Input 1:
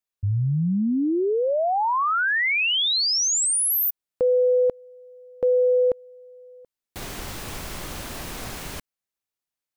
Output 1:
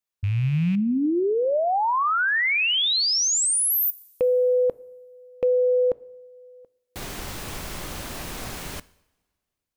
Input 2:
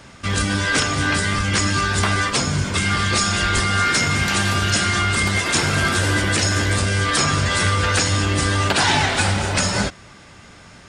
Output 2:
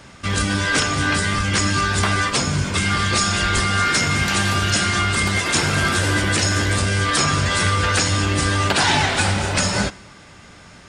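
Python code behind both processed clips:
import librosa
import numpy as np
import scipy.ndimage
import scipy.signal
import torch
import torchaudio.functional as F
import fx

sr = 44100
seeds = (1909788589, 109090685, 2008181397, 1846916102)

y = fx.rattle_buzz(x, sr, strikes_db=-30.0, level_db=-30.0)
y = fx.rev_double_slope(y, sr, seeds[0], early_s=0.72, late_s=2.2, knee_db=-19, drr_db=18.5)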